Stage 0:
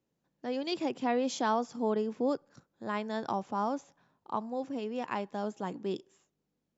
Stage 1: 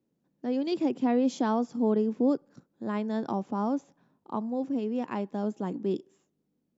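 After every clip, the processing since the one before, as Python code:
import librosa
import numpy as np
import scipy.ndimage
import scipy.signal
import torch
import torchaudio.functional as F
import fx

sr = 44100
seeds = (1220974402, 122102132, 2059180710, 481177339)

y = fx.peak_eq(x, sr, hz=250.0, db=12.0, octaves=2.1)
y = F.gain(torch.from_numpy(y), -4.0).numpy()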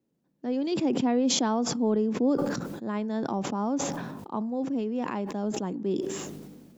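y = fx.sustainer(x, sr, db_per_s=34.0)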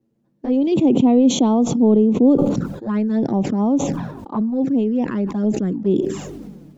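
y = fx.env_flanger(x, sr, rest_ms=9.0, full_db=-25.0)
y = fx.tilt_eq(y, sr, slope=-2.0)
y = F.gain(torch.from_numpy(y), 8.0).numpy()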